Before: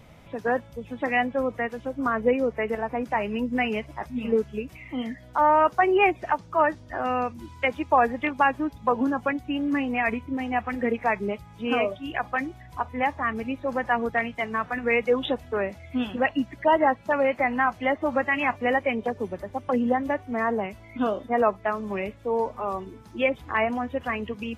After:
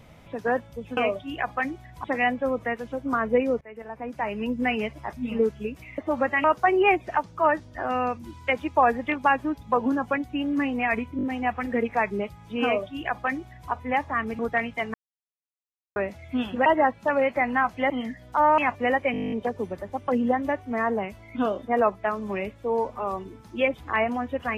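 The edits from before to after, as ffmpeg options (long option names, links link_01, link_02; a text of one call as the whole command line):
ffmpeg -i in.wav -filter_complex "[0:a]asplit=25[link_01][link_02][link_03][link_04][link_05][link_06][link_07][link_08][link_09][link_10][link_11][link_12][link_13][link_14][link_15][link_16][link_17][link_18][link_19][link_20][link_21][link_22][link_23][link_24][link_25];[link_01]atrim=end=0.972[link_26];[link_02]atrim=start=11.728:end=12.802[link_27];[link_03]atrim=start=0.968:end=2.54,asetpts=PTS-STARTPTS,afade=type=out:start_time=1.568:duration=0.004:curve=hsin:silence=0.0707946[link_28];[link_04]atrim=start=2.54:end=4.912,asetpts=PTS-STARTPTS,afade=type=in:duration=0.93:silence=0.0707946[link_29];[link_05]atrim=start=17.928:end=18.392[link_30];[link_06]atrim=start=5.588:end=10.342[link_31];[link_07]atrim=start=10.318:end=10.342[link_32];[link_08]atrim=start=10.318:end=10.342[link_33];[link_09]atrim=start=10.318:end=13.482[link_34];[link_10]atrim=start=13.998:end=14.55,asetpts=PTS-STARTPTS,afade=type=out:start_time=0.548:duration=0.004:curve=hsin[link_35];[link_11]atrim=start=14.55:end=15.57,asetpts=PTS-STARTPTS,volume=0[link_36];[link_12]atrim=start=15.57:end=16.272,asetpts=PTS-STARTPTS,afade=type=in:duration=0.004:curve=hsin[link_37];[link_13]atrim=start=16.688:end=17.932[link_38];[link_14]atrim=start=4.908:end=5.592[link_39];[link_15]atrim=start=18.388:end=18.952[link_40];[link_16]atrim=start=18.928:end=18.952[link_41];[link_17]atrim=start=18.928:end=18.952[link_42];[link_18]atrim=start=18.928:end=18.952[link_43];[link_19]atrim=start=18.928:end=18.952[link_44];[link_20]atrim=start=18.928:end=18.952[link_45];[link_21]atrim=start=18.928:end=18.952[link_46];[link_22]atrim=start=18.928:end=18.952[link_47];[link_23]atrim=start=18.928:end=18.952[link_48];[link_24]atrim=start=18.928:end=18.952[link_49];[link_25]atrim=start=18.928[link_50];[link_26][link_27]acrossfade=duration=0.004:curve1=hsin:curve2=hsin[link_51];[link_28][link_29]concat=n=2:v=0:a=1[link_52];[link_51][link_52]acrossfade=duration=0.004:curve1=hsin:curve2=hsin[link_53];[link_53][link_30]acrossfade=duration=0.004:curve1=hsin:curve2=hsin[link_54];[link_54][link_31]acrossfade=duration=0.004:curve1=hsin:curve2=hsin[link_55];[link_55][link_32]acrossfade=duration=0.004:curve1=hsin:curve2=hsin[link_56];[link_56][link_33]acrossfade=duration=0.004:curve1=hsin:curve2=hsin[link_57];[link_57][link_34]acrossfade=duration=0.004:curve1=hsin:curve2=hsin[link_58];[link_35][link_36][link_37]concat=n=3:v=0:a=1[link_59];[link_58][link_59]acrossfade=duration=0.004:curve1=hsin:curve2=hsin[link_60];[link_60][link_38]acrossfade=duration=0.004:curve1=hsin:curve2=hsin[link_61];[link_61][link_39]acrossfade=duration=0.004:curve1=hsin:curve2=hsin[link_62];[link_62][link_40]acrossfade=duration=0.004:curve1=hsin:curve2=hsin[link_63];[link_63][link_41]acrossfade=duration=0.004:curve1=hsin:curve2=hsin[link_64];[link_64][link_42]acrossfade=duration=0.004:curve1=hsin:curve2=hsin[link_65];[link_65][link_43]acrossfade=duration=0.004:curve1=hsin:curve2=hsin[link_66];[link_66][link_44]acrossfade=duration=0.004:curve1=hsin:curve2=hsin[link_67];[link_67][link_45]acrossfade=duration=0.004:curve1=hsin:curve2=hsin[link_68];[link_68][link_46]acrossfade=duration=0.004:curve1=hsin:curve2=hsin[link_69];[link_69][link_47]acrossfade=duration=0.004:curve1=hsin:curve2=hsin[link_70];[link_70][link_48]acrossfade=duration=0.004:curve1=hsin:curve2=hsin[link_71];[link_71][link_49]acrossfade=duration=0.004:curve1=hsin:curve2=hsin[link_72];[link_72][link_50]acrossfade=duration=0.004:curve1=hsin:curve2=hsin" out.wav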